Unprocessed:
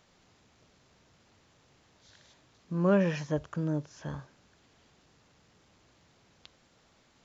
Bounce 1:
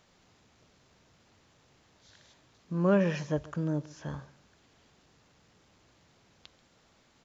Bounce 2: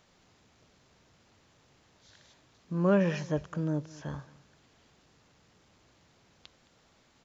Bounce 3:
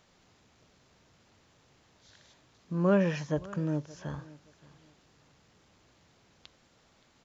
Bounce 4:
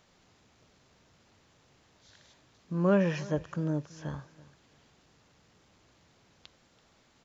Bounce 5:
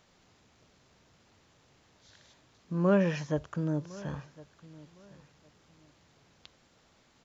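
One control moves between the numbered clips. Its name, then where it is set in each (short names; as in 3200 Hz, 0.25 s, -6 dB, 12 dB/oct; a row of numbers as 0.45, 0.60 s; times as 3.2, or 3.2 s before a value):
feedback echo, time: 0.136, 0.216, 0.572, 0.333, 1.059 s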